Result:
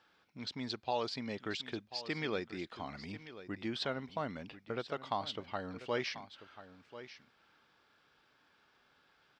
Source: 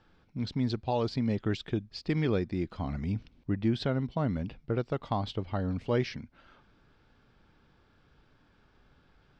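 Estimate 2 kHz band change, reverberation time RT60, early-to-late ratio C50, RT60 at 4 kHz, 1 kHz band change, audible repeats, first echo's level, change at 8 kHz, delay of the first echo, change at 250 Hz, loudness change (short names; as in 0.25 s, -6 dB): +0.5 dB, none, none, none, -2.5 dB, 1, -14.0 dB, n/a, 1.039 s, -11.5 dB, -8.0 dB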